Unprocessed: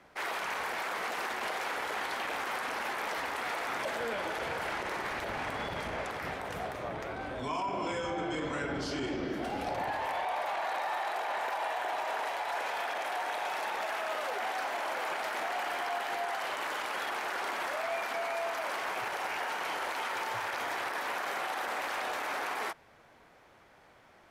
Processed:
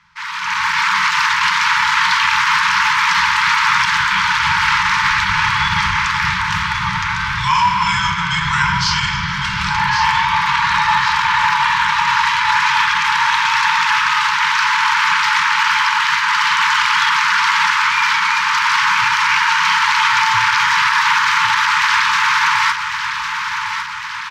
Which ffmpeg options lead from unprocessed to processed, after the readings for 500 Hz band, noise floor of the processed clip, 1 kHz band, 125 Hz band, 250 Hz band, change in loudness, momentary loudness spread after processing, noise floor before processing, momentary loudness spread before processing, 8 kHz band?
below −35 dB, −22 dBFS, +19.5 dB, +21.0 dB, +8.0 dB, +20.0 dB, 5 LU, −60 dBFS, 2 LU, +20.0 dB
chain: -filter_complex "[0:a]bandreject=frequency=60:width_type=h:width=6,bandreject=frequency=120:width_type=h:width=6,bandreject=frequency=180:width_type=h:width=6,afftfilt=real='re*(1-between(b*sr/4096,200,860))':imag='im*(1-between(b*sr/4096,200,860))':win_size=4096:overlap=0.75,highshelf=frequency=8000:width_type=q:width=1.5:gain=-13.5,dynaudnorm=framelen=240:gausssize=5:maxgain=14.5dB,asplit=2[link_01][link_02];[link_02]aecho=0:1:1104|2208|3312|4416|5520|6624|7728:0.398|0.231|0.134|0.0777|0.0451|0.0261|0.0152[link_03];[link_01][link_03]amix=inputs=2:normalize=0,volume=6.5dB"

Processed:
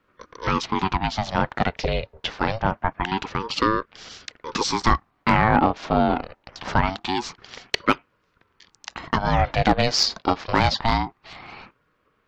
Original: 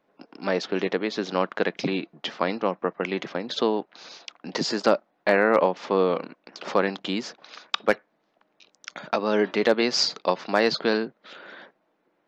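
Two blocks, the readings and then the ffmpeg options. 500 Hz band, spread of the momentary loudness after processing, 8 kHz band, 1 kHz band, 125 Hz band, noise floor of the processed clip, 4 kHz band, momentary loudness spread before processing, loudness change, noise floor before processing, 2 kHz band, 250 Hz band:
−4.0 dB, 18 LU, can't be measured, +7.0 dB, +12.0 dB, −68 dBFS, +2.5 dB, 19 LU, +2.0 dB, −71 dBFS, +2.0 dB, +2.5 dB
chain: -af "acontrast=46,aeval=exprs='val(0)*sin(2*PI*510*n/s+510*0.55/0.25*sin(2*PI*0.25*n/s))':channel_layout=same"

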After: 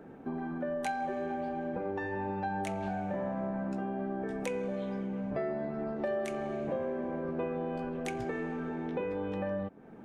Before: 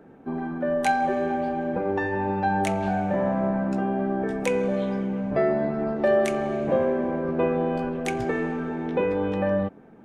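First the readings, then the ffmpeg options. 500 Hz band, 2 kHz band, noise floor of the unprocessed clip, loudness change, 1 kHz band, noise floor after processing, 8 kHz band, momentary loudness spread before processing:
−10.5 dB, −10.0 dB, −49 dBFS, −10.0 dB, −10.5 dB, −49 dBFS, −9.5 dB, 5 LU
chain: -af "acompressor=threshold=-37dB:ratio=2.5"

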